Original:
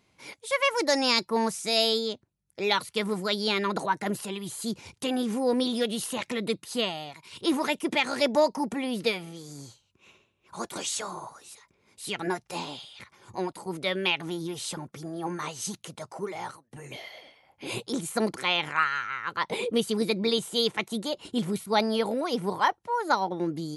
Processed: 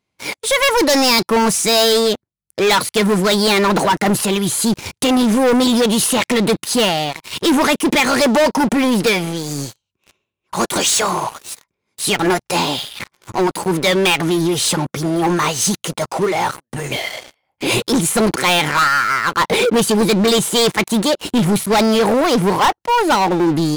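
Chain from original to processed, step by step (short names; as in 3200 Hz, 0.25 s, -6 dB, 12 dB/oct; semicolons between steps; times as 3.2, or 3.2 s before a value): sample leveller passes 5; gain +1 dB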